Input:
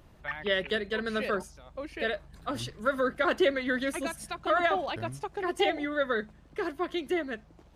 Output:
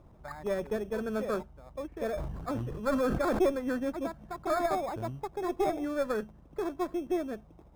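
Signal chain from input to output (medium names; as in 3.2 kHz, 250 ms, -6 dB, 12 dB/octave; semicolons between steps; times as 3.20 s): single-diode clipper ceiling -25 dBFS; low-pass 1.3 kHz 24 dB/octave; in parallel at -9 dB: sample-and-hold 15×; 2.11–3.46 s: on the sum: decay stretcher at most 29 dB/s; trim -1.5 dB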